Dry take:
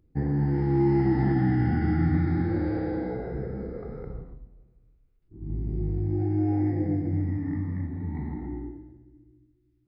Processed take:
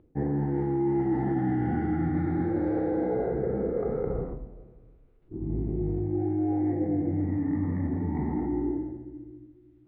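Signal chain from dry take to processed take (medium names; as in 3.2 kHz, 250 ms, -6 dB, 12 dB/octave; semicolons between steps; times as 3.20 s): steep low-pass 3.8 kHz 36 dB/octave; peaking EQ 530 Hz +12.5 dB 2.8 oct; reverse; compression 6:1, threshold -30 dBFS, peak gain reduction 18.5 dB; reverse; trim +4.5 dB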